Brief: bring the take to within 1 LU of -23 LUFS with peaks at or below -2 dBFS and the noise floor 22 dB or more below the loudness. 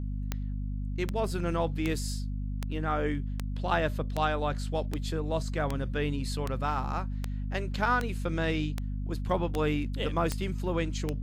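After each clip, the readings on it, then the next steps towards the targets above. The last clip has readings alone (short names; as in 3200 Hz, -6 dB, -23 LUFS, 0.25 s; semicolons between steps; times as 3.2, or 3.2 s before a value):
clicks 15; hum 50 Hz; harmonics up to 250 Hz; hum level -31 dBFS; loudness -31.5 LUFS; peak -12.5 dBFS; loudness target -23.0 LUFS
-> de-click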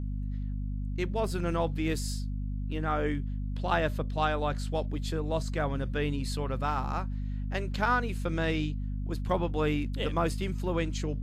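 clicks 0; hum 50 Hz; harmonics up to 250 Hz; hum level -31 dBFS
-> notches 50/100/150/200/250 Hz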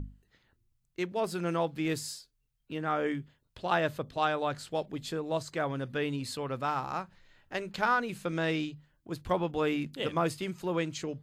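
hum none; loudness -33.0 LUFS; peak -14.5 dBFS; loudness target -23.0 LUFS
-> gain +10 dB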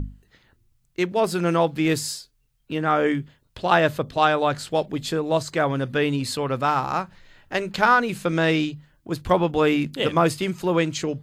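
loudness -23.0 LUFS; peak -4.5 dBFS; noise floor -66 dBFS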